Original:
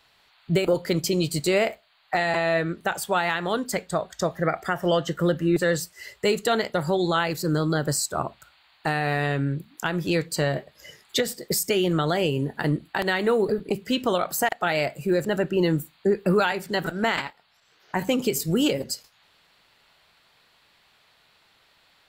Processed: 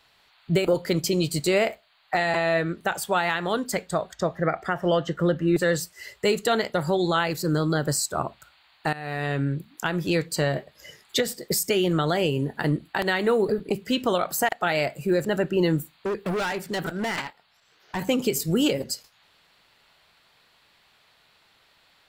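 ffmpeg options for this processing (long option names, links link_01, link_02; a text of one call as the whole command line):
ffmpeg -i in.wav -filter_complex "[0:a]asettb=1/sr,asplit=3[link_01][link_02][link_03];[link_01]atrim=end=4.144[link_04];[link_02]atrim=start=4.14:end=5.48,asetpts=PTS-STARTPTS,afade=type=in:duration=0.004:curve=qsin,afade=type=out:start_time=1.336:duration=0.004:curve=qsin,aemphasis=mode=reproduction:type=50kf[link_05];[link_03]atrim=start=5.476[link_06];[link_04][link_05]acrossfade=duration=0.004:curve1=hsin:curve2=qsin[link_07];[link_07][link_06]acrossfade=duration=0.004:curve1=qsin:curve2=hsin,asettb=1/sr,asplit=3[link_08][link_09][link_10];[link_08]atrim=end=15.784[link_11];[link_09]atrim=start=15.78:end=18.01,asetpts=PTS-STARTPTS,afade=type=in:duration=0.004:curve=qsin,afade=type=out:start_time=2.226:duration=0.004:curve=qsin,volume=24dB,asoftclip=hard,volume=-24dB[link_12];[link_10]atrim=start=18.006[link_13];[link_11][link_12]acrossfade=duration=0.004:curve1=hsin:curve2=qsin[link_14];[link_14][link_13]acrossfade=duration=0.004:curve1=qsin:curve2=hsin,asplit=2[link_15][link_16];[link_15]atrim=end=8.93,asetpts=PTS-STARTPTS,afade=type=out:start_time=8.926:duration=0.004:curve=hsin:silence=0.158489[link_17];[link_16]atrim=start=8.93,asetpts=PTS-STARTPTS,afade=type=in:duration=0.48:silence=0.158489[link_18];[link_17][link_18]concat=n=2:v=0:a=1" out.wav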